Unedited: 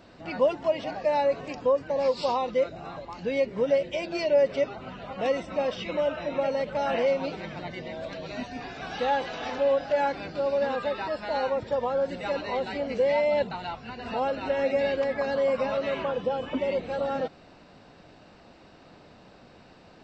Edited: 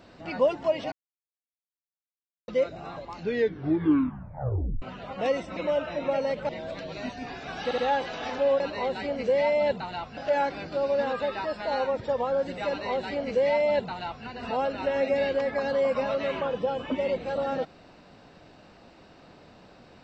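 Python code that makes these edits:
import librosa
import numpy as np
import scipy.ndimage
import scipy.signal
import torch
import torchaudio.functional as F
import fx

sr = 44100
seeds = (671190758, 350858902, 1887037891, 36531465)

y = fx.edit(x, sr, fx.silence(start_s=0.92, length_s=1.56),
    fx.tape_stop(start_s=3.15, length_s=1.67),
    fx.cut(start_s=5.57, length_s=0.3),
    fx.cut(start_s=6.79, length_s=1.04),
    fx.stutter(start_s=8.98, slice_s=0.07, count=3),
    fx.duplicate(start_s=12.31, length_s=1.57, to_s=9.8), tone=tone)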